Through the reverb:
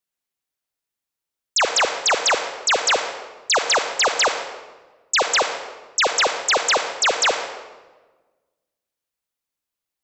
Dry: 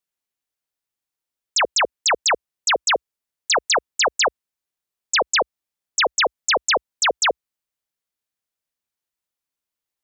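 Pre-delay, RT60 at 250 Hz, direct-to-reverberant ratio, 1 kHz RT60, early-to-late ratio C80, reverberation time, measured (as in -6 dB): 34 ms, 1.7 s, 6.0 dB, 1.2 s, 9.0 dB, 1.3 s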